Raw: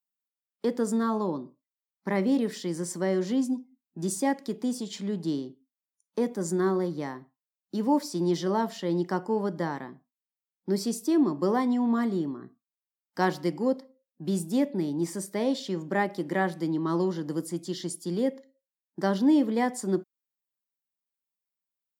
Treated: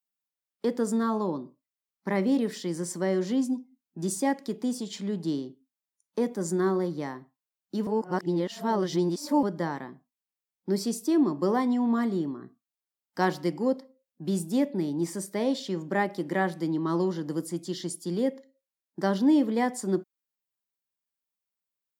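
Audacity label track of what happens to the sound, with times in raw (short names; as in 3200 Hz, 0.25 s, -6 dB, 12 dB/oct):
7.870000	9.430000	reverse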